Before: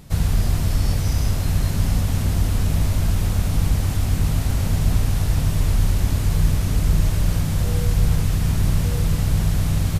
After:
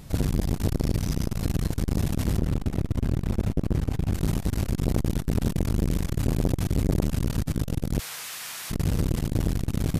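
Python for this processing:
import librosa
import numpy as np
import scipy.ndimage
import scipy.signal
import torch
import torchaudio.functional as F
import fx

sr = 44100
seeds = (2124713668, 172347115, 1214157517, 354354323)

y = fx.high_shelf(x, sr, hz=3600.0, db=-10.0, at=(2.38, 4.13))
y = fx.highpass(y, sr, hz=1300.0, slope=12, at=(7.98, 8.7), fade=0.02)
y = fx.transformer_sat(y, sr, knee_hz=360.0)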